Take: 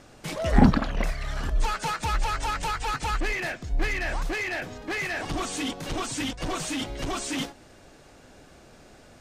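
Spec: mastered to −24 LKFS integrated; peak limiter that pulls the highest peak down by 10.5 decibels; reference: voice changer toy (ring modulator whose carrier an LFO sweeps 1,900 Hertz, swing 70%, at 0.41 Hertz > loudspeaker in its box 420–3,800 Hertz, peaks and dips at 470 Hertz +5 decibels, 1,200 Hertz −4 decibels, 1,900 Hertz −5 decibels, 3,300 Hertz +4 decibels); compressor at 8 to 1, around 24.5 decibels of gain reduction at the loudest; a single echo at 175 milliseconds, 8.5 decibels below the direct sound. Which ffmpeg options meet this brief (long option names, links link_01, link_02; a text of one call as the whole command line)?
ffmpeg -i in.wav -af "acompressor=threshold=-37dB:ratio=8,alimiter=level_in=13dB:limit=-24dB:level=0:latency=1,volume=-13dB,aecho=1:1:175:0.376,aeval=exprs='val(0)*sin(2*PI*1900*n/s+1900*0.7/0.41*sin(2*PI*0.41*n/s))':channel_layout=same,highpass=420,equalizer=frequency=470:width_type=q:width=4:gain=5,equalizer=frequency=1200:width_type=q:width=4:gain=-4,equalizer=frequency=1900:width_type=q:width=4:gain=-5,equalizer=frequency=3300:width_type=q:width=4:gain=4,lowpass=frequency=3800:width=0.5412,lowpass=frequency=3800:width=1.3066,volume=22dB" out.wav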